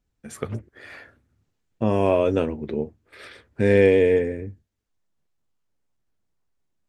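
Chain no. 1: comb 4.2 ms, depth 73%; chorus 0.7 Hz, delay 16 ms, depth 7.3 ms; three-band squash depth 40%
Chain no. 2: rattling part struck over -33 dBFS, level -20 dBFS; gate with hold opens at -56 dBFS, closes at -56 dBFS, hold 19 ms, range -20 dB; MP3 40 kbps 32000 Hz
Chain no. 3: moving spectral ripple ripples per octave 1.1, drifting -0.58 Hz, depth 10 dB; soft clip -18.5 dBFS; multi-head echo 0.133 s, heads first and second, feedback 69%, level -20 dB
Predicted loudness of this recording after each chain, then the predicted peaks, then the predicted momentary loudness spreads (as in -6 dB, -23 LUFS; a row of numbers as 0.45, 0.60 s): -23.0, -22.0, -26.5 LUFS; -7.0, -5.5, -16.5 dBFS; 22, 18, 19 LU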